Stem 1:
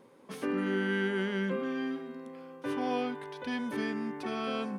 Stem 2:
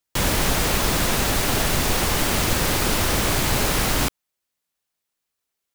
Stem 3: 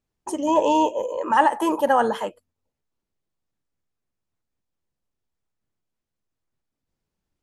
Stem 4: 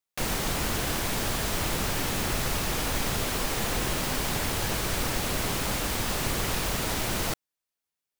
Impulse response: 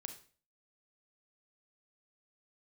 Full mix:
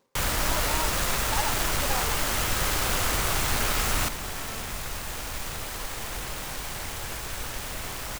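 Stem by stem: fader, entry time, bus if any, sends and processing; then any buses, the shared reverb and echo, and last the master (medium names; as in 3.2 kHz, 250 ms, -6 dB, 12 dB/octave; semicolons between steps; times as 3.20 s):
-5.5 dB, 0.00 s, no send, auto duck -14 dB, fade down 0.25 s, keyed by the third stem
-6.0 dB, 0.00 s, send -4.5 dB, peaking EQ 1.3 kHz +3.5 dB 0.4 oct
-12.0 dB, 0.00 s, no send, none
-3.5 dB, 2.40 s, no send, none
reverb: on, RT60 0.40 s, pre-delay 30 ms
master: peaking EQ 250 Hz -9 dB 2.5 oct; delay time shaken by noise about 4.5 kHz, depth 0.061 ms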